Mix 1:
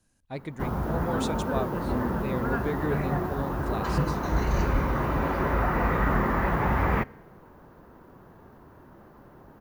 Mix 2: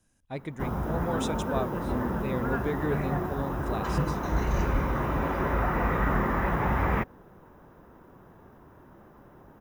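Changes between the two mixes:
background: send off; master: add Butterworth band-stop 4400 Hz, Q 7.3

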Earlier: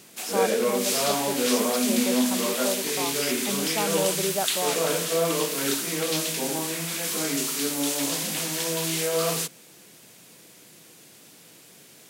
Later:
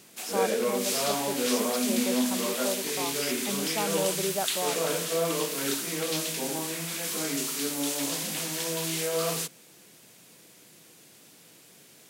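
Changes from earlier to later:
background -3.5 dB; reverb: off

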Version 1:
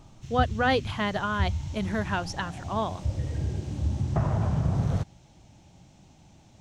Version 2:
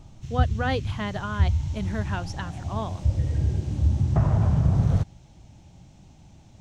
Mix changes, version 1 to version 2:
speech -4.0 dB; master: add low shelf 140 Hz +8.5 dB

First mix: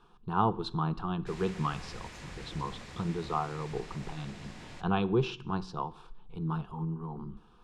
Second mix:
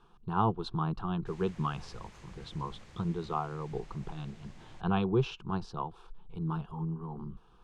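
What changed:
background -6.5 dB; reverb: off

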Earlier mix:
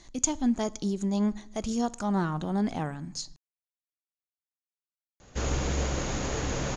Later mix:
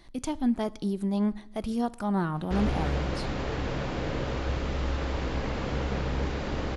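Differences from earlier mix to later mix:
background: entry -2.85 s; master: remove synth low-pass 6700 Hz, resonance Q 14

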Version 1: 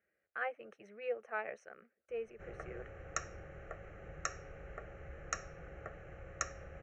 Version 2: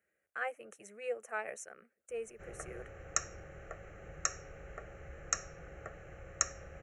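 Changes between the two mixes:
speech: remove polynomial smoothing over 15 samples; master: remove air absorption 130 m

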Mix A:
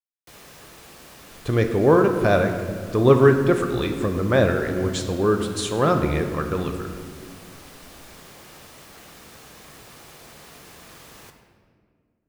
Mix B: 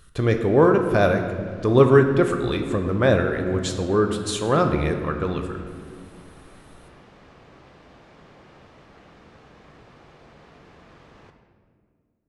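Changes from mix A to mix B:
speech: entry -1.30 s; background: add tape spacing loss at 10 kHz 31 dB

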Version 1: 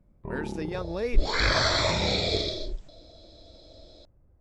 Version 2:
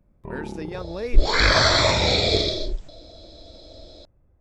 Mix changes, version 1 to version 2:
first sound: remove air absorption 430 m; second sound +6.5 dB

